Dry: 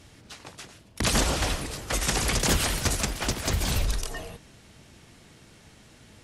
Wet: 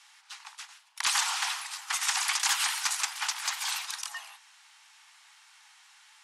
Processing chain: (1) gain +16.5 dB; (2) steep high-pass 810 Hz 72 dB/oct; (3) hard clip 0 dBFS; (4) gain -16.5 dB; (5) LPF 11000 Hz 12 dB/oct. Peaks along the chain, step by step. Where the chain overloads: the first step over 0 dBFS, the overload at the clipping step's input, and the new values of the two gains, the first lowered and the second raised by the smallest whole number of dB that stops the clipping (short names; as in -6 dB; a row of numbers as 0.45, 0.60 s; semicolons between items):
+6.0, +5.0, 0.0, -16.5, -15.5 dBFS; step 1, 5.0 dB; step 1 +11.5 dB, step 4 -11.5 dB